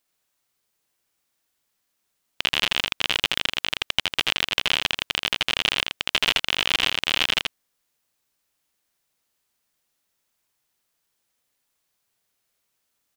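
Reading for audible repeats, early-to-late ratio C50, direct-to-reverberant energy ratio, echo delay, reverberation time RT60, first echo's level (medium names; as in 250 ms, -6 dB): 1, no reverb, no reverb, 82 ms, no reverb, -4.5 dB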